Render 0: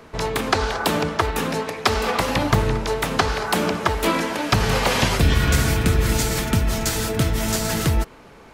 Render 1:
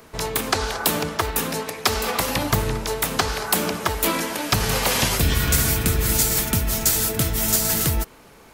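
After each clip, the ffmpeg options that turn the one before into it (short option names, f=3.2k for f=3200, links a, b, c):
-af "aemphasis=mode=production:type=50fm,volume=-3dB"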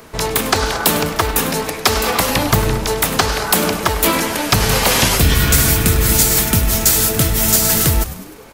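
-filter_complex "[0:a]aeval=exprs='0.891*sin(PI/2*1.58*val(0)/0.891)':c=same,asplit=6[a][b][c][d][e][f];[b]adelay=101,afreqshift=-120,volume=-14dB[g];[c]adelay=202,afreqshift=-240,volume=-19.4dB[h];[d]adelay=303,afreqshift=-360,volume=-24.7dB[i];[e]adelay=404,afreqshift=-480,volume=-30.1dB[j];[f]adelay=505,afreqshift=-600,volume=-35.4dB[k];[a][g][h][i][j][k]amix=inputs=6:normalize=0,volume=-1dB"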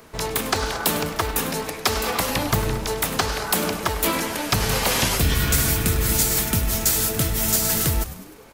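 -af "acrusher=bits=9:mode=log:mix=0:aa=0.000001,volume=-7dB"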